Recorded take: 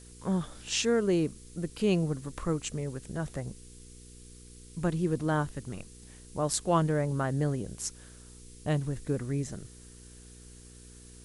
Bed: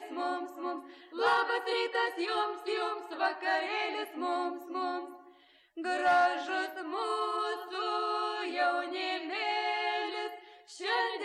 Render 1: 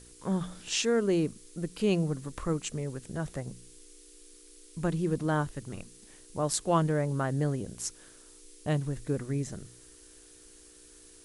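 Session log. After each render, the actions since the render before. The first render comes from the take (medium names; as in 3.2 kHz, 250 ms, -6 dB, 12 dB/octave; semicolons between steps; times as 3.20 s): de-hum 60 Hz, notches 4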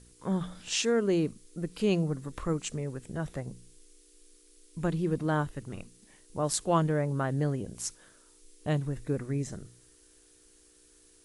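noise print and reduce 6 dB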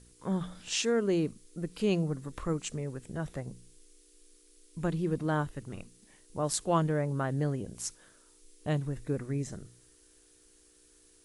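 trim -1.5 dB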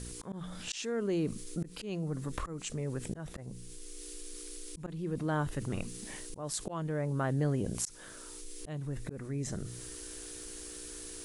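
slow attack 786 ms; level flattener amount 50%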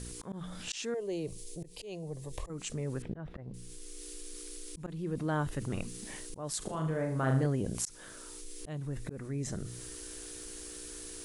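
0.94–2.50 s: static phaser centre 570 Hz, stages 4; 3.02–3.54 s: distance through air 360 m; 6.58–7.46 s: flutter echo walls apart 6.5 m, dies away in 0.52 s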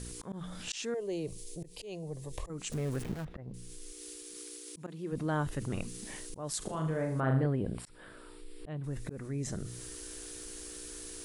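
2.72–3.25 s: jump at every zero crossing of -39.5 dBFS; 3.91–5.11 s: high-pass 62 Hz -> 240 Hz; 7.20–8.84 s: boxcar filter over 7 samples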